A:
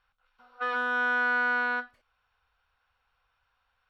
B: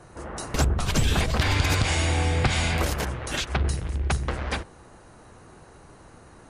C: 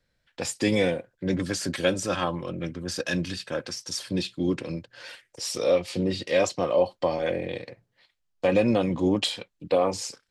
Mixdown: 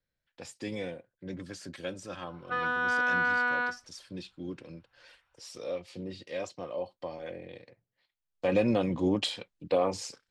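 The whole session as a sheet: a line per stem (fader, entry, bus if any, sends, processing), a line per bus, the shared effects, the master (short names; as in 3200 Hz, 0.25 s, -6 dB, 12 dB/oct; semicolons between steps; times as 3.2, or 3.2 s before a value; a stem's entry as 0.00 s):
-1.0 dB, 1.90 s, no send, dry
off
8.16 s -13.5 dB -> 8.53 s -4 dB, 0.00 s, no send, dry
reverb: off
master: high shelf 10000 Hz -9 dB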